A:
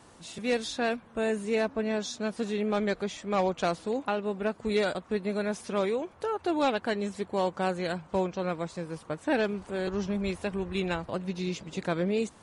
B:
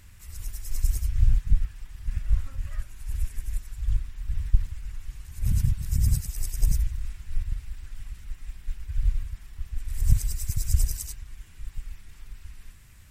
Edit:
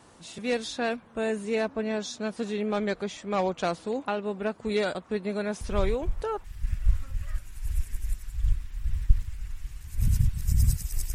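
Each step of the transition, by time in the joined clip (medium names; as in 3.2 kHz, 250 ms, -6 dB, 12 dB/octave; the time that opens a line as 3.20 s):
A
5.61 s: add B from 1.05 s 0.83 s -9 dB
6.44 s: go over to B from 1.88 s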